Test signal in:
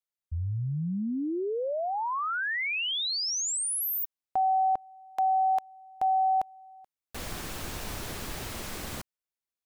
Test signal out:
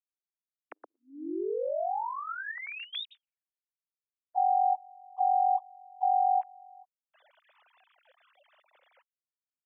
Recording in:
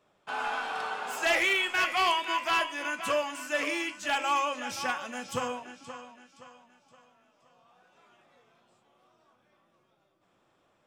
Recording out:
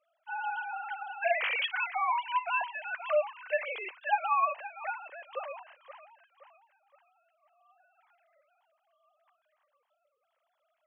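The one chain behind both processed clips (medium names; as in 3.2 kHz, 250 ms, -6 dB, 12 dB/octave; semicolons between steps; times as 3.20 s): formants replaced by sine waves; brick-wall FIR high-pass 280 Hz; trim -2.5 dB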